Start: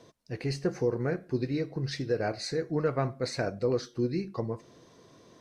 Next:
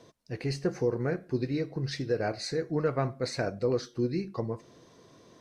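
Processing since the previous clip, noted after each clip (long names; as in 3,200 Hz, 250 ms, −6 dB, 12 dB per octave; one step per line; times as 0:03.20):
no processing that can be heard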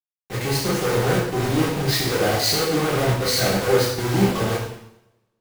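log-companded quantiser 2 bits
coupled-rooms reverb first 0.91 s, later 2.4 s, from −24 dB, DRR −7 dB
multiband upward and downward expander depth 40%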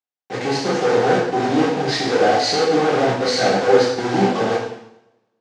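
loudspeaker in its box 180–6,500 Hz, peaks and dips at 260 Hz +8 dB, 470 Hz +6 dB, 760 Hz +10 dB, 1,600 Hz +4 dB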